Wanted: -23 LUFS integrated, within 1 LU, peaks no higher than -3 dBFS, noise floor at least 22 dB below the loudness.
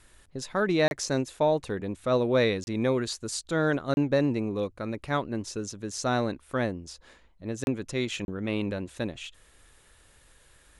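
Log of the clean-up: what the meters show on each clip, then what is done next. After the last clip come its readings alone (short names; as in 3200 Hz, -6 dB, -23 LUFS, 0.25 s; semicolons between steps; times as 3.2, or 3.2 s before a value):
dropouts 5; longest dropout 31 ms; loudness -28.5 LUFS; peak -12.0 dBFS; loudness target -23.0 LUFS
-> interpolate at 0.88/2.64/3.94/7.64/8.25, 31 ms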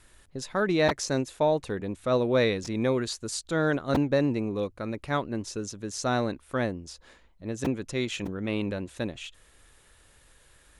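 dropouts 0; loudness -28.5 LUFS; peak -11.5 dBFS; loudness target -23.0 LUFS
-> gain +5.5 dB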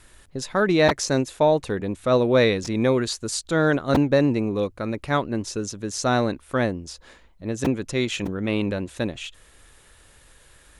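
loudness -23.0 LUFS; peak -6.0 dBFS; noise floor -54 dBFS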